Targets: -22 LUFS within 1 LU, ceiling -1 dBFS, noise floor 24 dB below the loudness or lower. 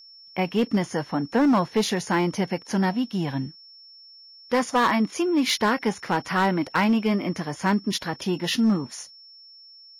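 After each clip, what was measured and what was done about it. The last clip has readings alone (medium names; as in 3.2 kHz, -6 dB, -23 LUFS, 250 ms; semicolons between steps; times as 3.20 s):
clipped samples 1.3%; clipping level -15.0 dBFS; steady tone 5.4 kHz; tone level -46 dBFS; loudness -24.0 LUFS; peak level -15.0 dBFS; loudness target -22.0 LUFS
-> clip repair -15 dBFS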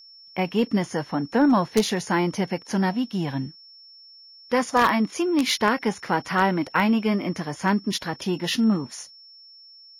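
clipped samples 0.0%; steady tone 5.4 kHz; tone level -46 dBFS
-> band-stop 5.4 kHz, Q 30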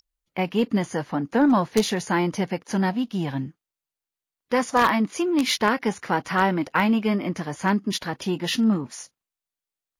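steady tone not found; loudness -23.5 LUFS; peak level -6.0 dBFS; loudness target -22.0 LUFS
-> trim +1.5 dB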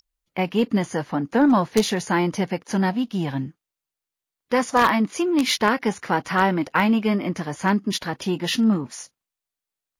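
loudness -22.0 LUFS; peak level -4.5 dBFS; noise floor -88 dBFS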